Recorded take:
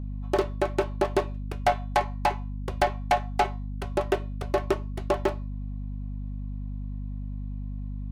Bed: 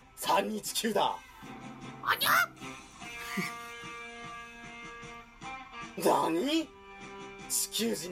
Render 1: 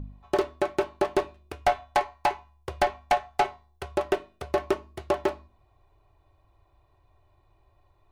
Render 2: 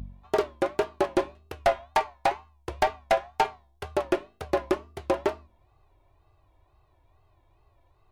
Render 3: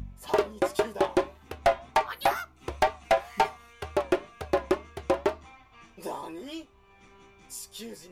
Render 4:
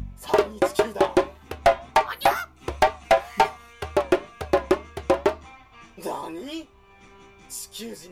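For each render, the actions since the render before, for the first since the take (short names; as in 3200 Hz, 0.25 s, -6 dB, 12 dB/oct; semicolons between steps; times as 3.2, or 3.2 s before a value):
de-hum 50 Hz, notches 5
wow and flutter 130 cents
add bed -10 dB
gain +5 dB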